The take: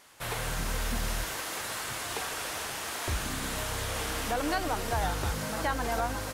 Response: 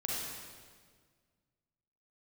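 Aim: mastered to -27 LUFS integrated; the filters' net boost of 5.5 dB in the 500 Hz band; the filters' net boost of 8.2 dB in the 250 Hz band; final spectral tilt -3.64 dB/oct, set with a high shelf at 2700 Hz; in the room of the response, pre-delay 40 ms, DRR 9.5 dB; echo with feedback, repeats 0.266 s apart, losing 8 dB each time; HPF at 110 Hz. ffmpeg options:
-filter_complex "[0:a]highpass=110,equalizer=f=250:t=o:g=9,equalizer=f=500:t=o:g=4.5,highshelf=f=2.7k:g=4,aecho=1:1:266|532|798|1064|1330:0.398|0.159|0.0637|0.0255|0.0102,asplit=2[a][b];[1:a]atrim=start_sample=2205,adelay=40[c];[b][c]afir=irnorm=-1:irlink=0,volume=-13.5dB[d];[a][d]amix=inputs=2:normalize=0,volume=1dB"

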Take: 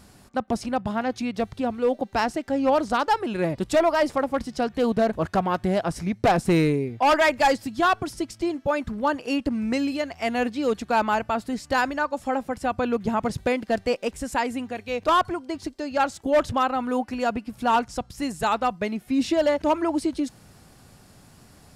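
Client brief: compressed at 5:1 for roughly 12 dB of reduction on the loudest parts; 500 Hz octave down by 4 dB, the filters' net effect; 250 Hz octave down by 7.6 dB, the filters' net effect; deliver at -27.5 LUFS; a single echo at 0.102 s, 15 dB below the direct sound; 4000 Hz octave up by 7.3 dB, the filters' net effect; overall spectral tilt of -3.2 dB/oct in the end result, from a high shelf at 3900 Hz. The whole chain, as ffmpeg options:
-af "equalizer=f=250:t=o:g=-8.5,equalizer=f=500:t=o:g=-3.5,highshelf=f=3.9k:g=6.5,equalizer=f=4k:t=o:g=5.5,acompressor=threshold=-29dB:ratio=5,aecho=1:1:102:0.178,volume=5.5dB"

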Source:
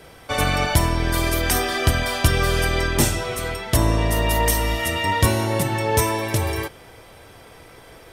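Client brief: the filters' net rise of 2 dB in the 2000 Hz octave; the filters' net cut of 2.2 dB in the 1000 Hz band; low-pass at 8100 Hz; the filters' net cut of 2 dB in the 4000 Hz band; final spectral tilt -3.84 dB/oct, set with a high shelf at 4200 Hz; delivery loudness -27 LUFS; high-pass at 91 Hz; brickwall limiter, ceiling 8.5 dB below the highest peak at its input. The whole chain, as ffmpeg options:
-af "highpass=91,lowpass=8.1k,equalizer=f=1k:t=o:g=-3.5,equalizer=f=2k:t=o:g=4,equalizer=f=4k:t=o:g=-9,highshelf=f=4.2k:g=8,volume=-3.5dB,alimiter=limit=-16.5dB:level=0:latency=1"

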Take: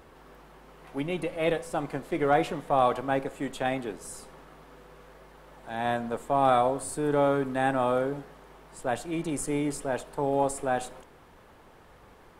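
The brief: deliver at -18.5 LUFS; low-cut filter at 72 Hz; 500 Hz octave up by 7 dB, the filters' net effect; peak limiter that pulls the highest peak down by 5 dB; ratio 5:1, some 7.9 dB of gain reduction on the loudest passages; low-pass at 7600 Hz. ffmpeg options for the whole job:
-af "highpass=72,lowpass=7.6k,equalizer=f=500:t=o:g=8.5,acompressor=threshold=-22dB:ratio=5,volume=11dB,alimiter=limit=-7dB:level=0:latency=1"

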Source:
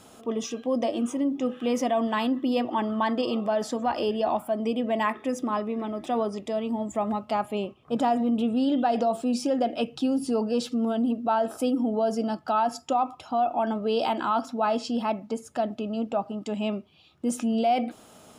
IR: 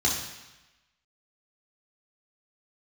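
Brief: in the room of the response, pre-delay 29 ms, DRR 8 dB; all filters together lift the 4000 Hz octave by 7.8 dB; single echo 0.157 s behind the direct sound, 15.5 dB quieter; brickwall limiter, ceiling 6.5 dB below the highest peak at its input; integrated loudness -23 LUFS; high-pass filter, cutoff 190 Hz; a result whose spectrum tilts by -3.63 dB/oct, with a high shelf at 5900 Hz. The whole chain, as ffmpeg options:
-filter_complex "[0:a]highpass=190,equalizer=f=4k:t=o:g=8,highshelf=f=5.9k:g=8,alimiter=limit=-18dB:level=0:latency=1,aecho=1:1:157:0.168,asplit=2[a][b];[1:a]atrim=start_sample=2205,adelay=29[c];[b][c]afir=irnorm=-1:irlink=0,volume=-19dB[d];[a][d]amix=inputs=2:normalize=0,volume=4dB"

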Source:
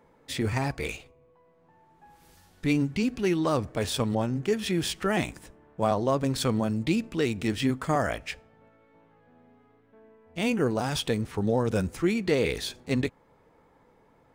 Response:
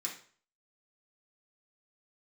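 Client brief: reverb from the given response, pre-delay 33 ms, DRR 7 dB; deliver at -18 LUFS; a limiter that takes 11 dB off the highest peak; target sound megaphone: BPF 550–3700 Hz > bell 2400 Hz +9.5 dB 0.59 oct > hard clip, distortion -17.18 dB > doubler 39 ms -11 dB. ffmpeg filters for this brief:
-filter_complex "[0:a]alimiter=limit=-23.5dB:level=0:latency=1,asplit=2[a][b];[1:a]atrim=start_sample=2205,adelay=33[c];[b][c]afir=irnorm=-1:irlink=0,volume=-7.5dB[d];[a][d]amix=inputs=2:normalize=0,highpass=550,lowpass=3.7k,equalizer=f=2.4k:t=o:w=0.59:g=9.5,asoftclip=type=hard:threshold=-27dB,asplit=2[e][f];[f]adelay=39,volume=-11dB[g];[e][g]amix=inputs=2:normalize=0,volume=17dB"

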